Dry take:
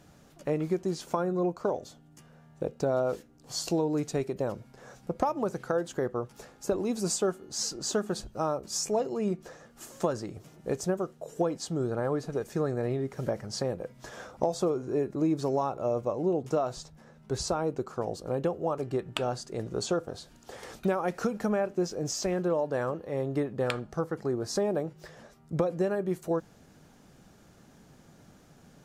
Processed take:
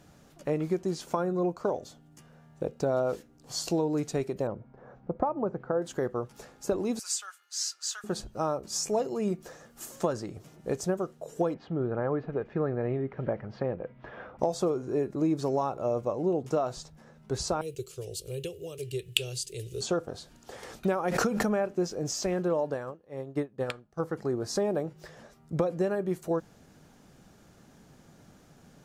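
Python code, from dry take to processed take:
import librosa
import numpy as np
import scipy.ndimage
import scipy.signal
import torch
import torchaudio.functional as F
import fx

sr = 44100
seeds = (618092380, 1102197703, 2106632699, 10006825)

y = fx.lowpass(x, sr, hz=1200.0, slope=12, at=(4.47, 5.82))
y = fx.highpass(y, sr, hz=1400.0, slope=24, at=(6.99, 8.04))
y = fx.high_shelf(y, sr, hz=8300.0, db=9.0, at=(8.89, 9.96))
y = fx.lowpass(y, sr, hz=2700.0, slope=24, at=(11.54, 14.39))
y = fx.curve_eq(y, sr, hz=(130.0, 240.0, 410.0, 820.0, 1500.0, 2800.0, 5500.0, 9800.0), db=(0, -24, -1, -27, -18, 10, 5, 15), at=(17.61, 19.81))
y = fx.pre_swell(y, sr, db_per_s=34.0, at=(21.06, 21.59))
y = fx.upward_expand(y, sr, threshold_db=-38.0, expansion=2.5, at=(22.74, 24.0))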